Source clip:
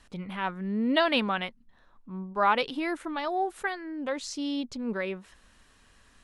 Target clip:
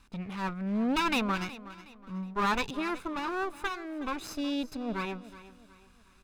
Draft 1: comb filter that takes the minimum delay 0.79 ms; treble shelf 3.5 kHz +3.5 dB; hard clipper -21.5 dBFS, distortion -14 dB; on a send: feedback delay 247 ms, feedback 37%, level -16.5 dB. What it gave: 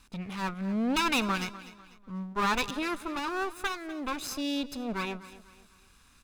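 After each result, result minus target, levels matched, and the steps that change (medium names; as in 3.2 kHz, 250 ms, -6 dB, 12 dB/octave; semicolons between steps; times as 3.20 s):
echo 121 ms early; 8 kHz band +5.0 dB
change: feedback delay 368 ms, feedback 37%, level -16.5 dB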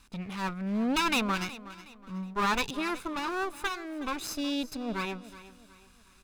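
8 kHz band +5.5 dB
change: treble shelf 3.5 kHz -4.5 dB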